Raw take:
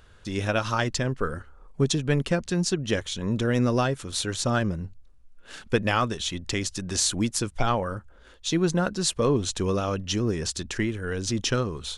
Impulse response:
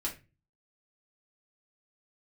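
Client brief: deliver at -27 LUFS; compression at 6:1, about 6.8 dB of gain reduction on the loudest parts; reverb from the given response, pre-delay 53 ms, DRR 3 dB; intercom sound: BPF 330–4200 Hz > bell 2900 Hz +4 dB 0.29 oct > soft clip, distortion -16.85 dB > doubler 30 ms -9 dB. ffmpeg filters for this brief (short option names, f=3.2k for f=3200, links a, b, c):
-filter_complex "[0:a]acompressor=threshold=-25dB:ratio=6,asplit=2[a][b];[1:a]atrim=start_sample=2205,adelay=53[c];[b][c]afir=irnorm=-1:irlink=0,volume=-5.5dB[d];[a][d]amix=inputs=2:normalize=0,highpass=330,lowpass=4.2k,equalizer=f=2.9k:t=o:w=0.29:g=4,asoftclip=threshold=-23dB,asplit=2[e][f];[f]adelay=30,volume=-9dB[g];[e][g]amix=inputs=2:normalize=0,volume=5.5dB"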